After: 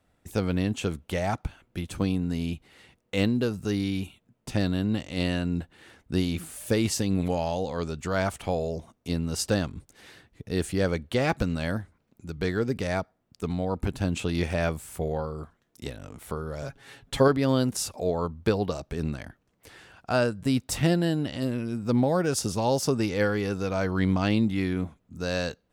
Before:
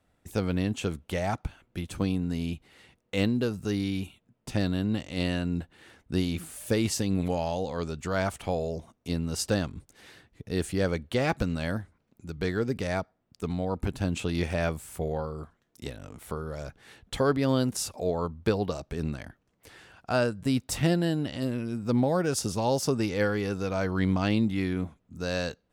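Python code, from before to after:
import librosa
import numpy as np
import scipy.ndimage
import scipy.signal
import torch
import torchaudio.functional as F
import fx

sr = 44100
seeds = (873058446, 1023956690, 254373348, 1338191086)

y = fx.comb(x, sr, ms=7.3, depth=0.79, at=(16.62, 17.28))
y = y * librosa.db_to_amplitude(1.5)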